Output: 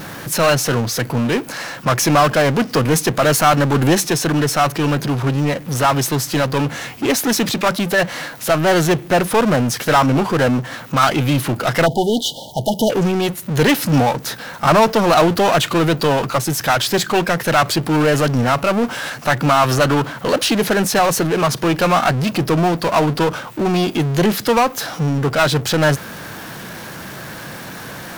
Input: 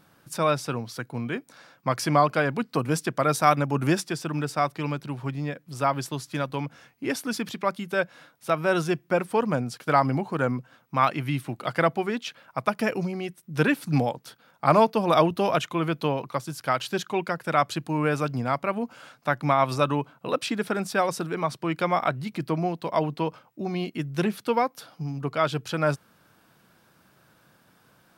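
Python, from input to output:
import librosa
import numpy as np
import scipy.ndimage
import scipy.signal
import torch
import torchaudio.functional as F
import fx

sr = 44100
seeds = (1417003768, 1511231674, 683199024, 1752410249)

y = fx.power_curve(x, sr, exponent=0.5)
y = fx.formant_shift(y, sr, semitones=2)
y = fx.spec_erase(y, sr, start_s=11.86, length_s=1.04, low_hz=940.0, high_hz=2900.0)
y = y * librosa.db_to_amplitude(1.5)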